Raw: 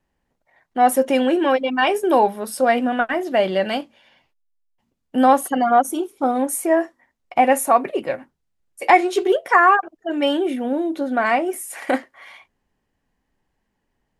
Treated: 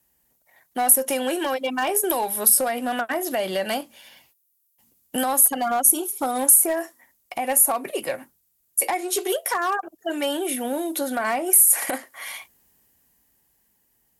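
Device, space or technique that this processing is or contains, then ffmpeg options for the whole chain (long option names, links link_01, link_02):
FM broadcast chain: -filter_complex "[0:a]highpass=42,dynaudnorm=framelen=140:gausssize=21:maxgain=11.5dB,acrossover=split=560|1500[link_01][link_02][link_03];[link_01]acompressor=threshold=-28dB:ratio=4[link_04];[link_02]acompressor=threshold=-22dB:ratio=4[link_05];[link_03]acompressor=threshold=-35dB:ratio=4[link_06];[link_04][link_05][link_06]amix=inputs=3:normalize=0,aemphasis=mode=production:type=50fm,alimiter=limit=-13.5dB:level=0:latency=1:release=154,asoftclip=type=hard:threshold=-16dB,lowpass=frequency=15000:width=0.5412,lowpass=frequency=15000:width=1.3066,aemphasis=mode=production:type=50fm,volume=-1dB"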